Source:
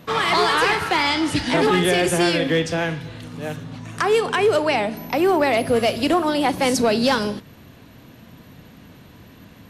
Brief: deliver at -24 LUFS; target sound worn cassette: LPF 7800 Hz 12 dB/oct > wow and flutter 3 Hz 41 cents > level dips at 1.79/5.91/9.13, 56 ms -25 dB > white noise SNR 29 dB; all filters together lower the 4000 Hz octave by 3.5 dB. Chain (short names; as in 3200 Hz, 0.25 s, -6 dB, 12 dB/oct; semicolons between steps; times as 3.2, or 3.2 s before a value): LPF 7800 Hz 12 dB/oct; bell 4000 Hz -4.5 dB; wow and flutter 3 Hz 41 cents; level dips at 1.79/5.91/9.13, 56 ms -25 dB; white noise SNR 29 dB; gain -4 dB